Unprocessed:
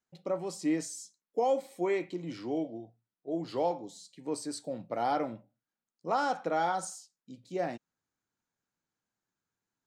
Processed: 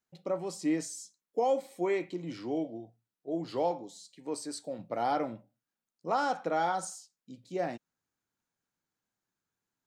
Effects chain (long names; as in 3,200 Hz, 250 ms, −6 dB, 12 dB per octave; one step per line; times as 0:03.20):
0:03.83–0:04.79: low-shelf EQ 190 Hz −8 dB